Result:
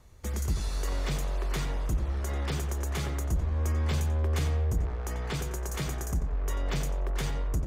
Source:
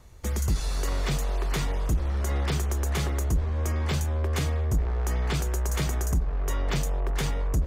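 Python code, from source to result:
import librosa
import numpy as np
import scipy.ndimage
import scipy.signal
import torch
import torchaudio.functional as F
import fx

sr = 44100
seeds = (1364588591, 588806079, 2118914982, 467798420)

y = fx.echo_filtered(x, sr, ms=90, feedback_pct=34, hz=3400.0, wet_db=-7.5)
y = F.gain(torch.from_numpy(y), -4.5).numpy()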